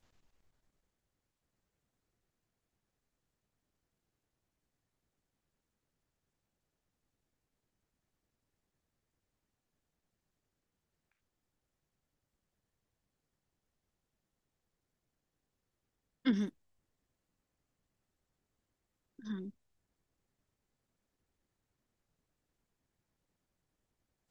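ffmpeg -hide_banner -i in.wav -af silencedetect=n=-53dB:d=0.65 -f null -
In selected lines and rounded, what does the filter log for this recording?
silence_start: 0.00
silence_end: 16.25 | silence_duration: 16.25
silence_start: 16.49
silence_end: 19.19 | silence_duration: 2.70
silence_start: 19.50
silence_end: 24.30 | silence_duration: 4.80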